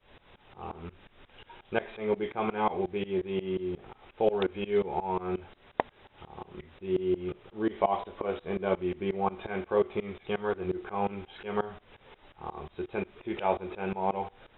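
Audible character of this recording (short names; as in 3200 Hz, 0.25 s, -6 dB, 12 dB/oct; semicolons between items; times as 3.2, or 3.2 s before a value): tremolo saw up 5.6 Hz, depth 95%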